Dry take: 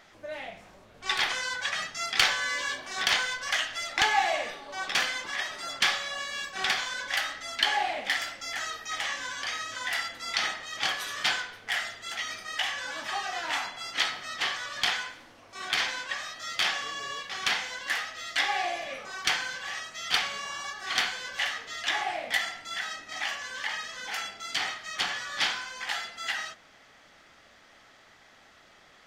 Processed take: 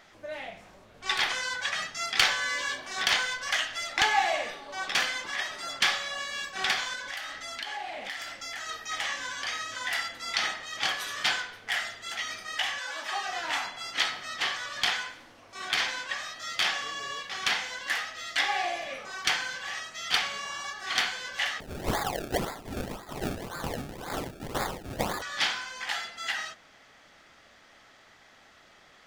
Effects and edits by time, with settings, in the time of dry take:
0:06.95–0:08.69: downward compressor 4 to 1, threshold −34 dBFS
0:12.78–0:13.26: high-pass filter 630 Hz → 220 Hz
0:21.60–0:25.22: sample-and-hold swept by an LFO 30× 1.9 Hz

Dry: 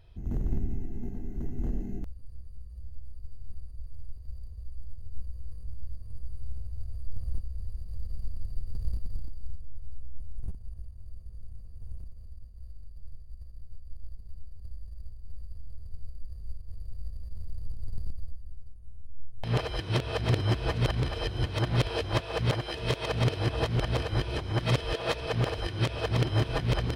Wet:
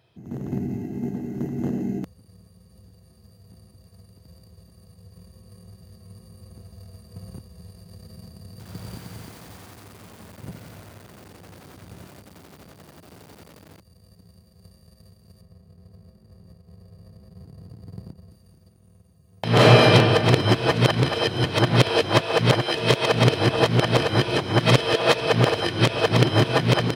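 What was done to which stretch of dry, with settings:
0:08.50–0:13.80: feedback echo at a low word length 89 ms, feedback 80%, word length 8 bits, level −10 dB
0:15.41–0:18.31: high-shelf EQ 2,200 Hz −11.5 dB
0:19.51–0:19.93: thrown reverb, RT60 1.7 s, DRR −9 dB
whole clip: high-pass filter 130 Hz 24 dB per octave; automatic gain control gain up to 10.5 dB; level +2 dB

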